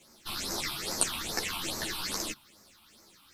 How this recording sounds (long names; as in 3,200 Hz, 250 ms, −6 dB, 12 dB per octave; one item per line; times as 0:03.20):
phaser sweep stages 6, 2.4 Hz, lowest notch 460–3,100 Hz
a quantiser's noise floor 12 bits, dither none
a shimmering, thickened sound